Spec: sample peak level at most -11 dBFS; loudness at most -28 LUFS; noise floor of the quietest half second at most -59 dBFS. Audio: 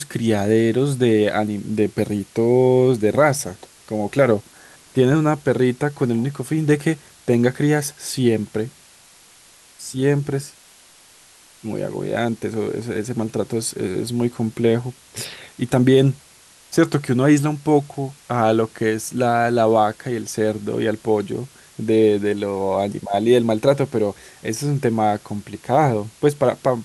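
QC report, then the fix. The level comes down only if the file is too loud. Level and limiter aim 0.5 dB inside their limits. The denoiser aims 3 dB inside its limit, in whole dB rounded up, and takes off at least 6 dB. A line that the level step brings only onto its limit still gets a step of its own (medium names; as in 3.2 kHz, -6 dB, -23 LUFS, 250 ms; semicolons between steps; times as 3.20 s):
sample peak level -4.0 dBFS: fail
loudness -20.0 LUFS: fail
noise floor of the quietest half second -49 dBFS: fail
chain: noise reduction 6 dB, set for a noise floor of -49 dBFS; trim -8.5 dB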